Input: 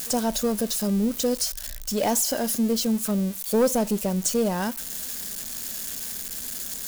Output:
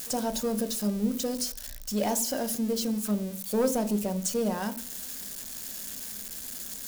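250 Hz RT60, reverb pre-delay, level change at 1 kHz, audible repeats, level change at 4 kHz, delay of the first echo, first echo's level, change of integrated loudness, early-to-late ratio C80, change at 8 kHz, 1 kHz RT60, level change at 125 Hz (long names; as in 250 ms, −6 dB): 0.55 s, 3 ms, −4.5 dB, no echo audible, −5.5 dB, no echo audible, no echo audible, −5.0 dB, 20.0 dB, −5.5 dB, 0.50 s, −5.0 dB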